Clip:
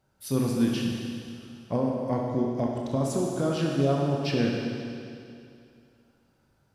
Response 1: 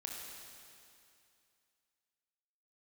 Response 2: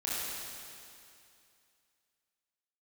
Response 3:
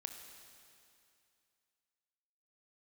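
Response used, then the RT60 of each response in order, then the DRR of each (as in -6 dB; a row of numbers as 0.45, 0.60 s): 1; 2.5, 2.5, 2.5 s; -2.0, -9.0, 4.5 dB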